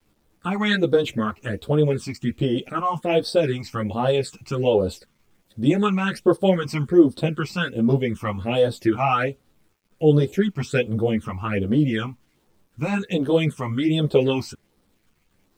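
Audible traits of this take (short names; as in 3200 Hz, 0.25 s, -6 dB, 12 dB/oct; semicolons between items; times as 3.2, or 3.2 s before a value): phasing stages 8, 1.3 Hz, lowest notch 460–2300 Hz; a quantiser's noise floor 12-bit, dither none; a shimmering, thickened sound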